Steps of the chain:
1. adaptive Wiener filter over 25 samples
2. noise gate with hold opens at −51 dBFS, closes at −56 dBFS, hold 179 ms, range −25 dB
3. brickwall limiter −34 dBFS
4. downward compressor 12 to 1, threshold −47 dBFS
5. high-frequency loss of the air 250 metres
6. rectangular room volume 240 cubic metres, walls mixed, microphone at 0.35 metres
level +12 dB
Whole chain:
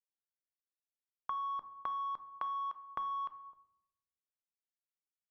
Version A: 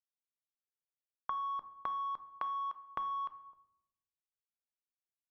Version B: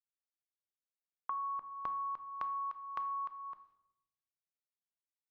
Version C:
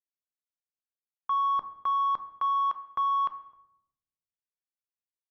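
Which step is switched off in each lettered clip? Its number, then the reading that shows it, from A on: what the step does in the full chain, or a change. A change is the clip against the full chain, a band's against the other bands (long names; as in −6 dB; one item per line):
3, average gain reduction 2.5 dB
1, change in momentary loudness spread +1 LU
4, average gain reduction 8.0 dB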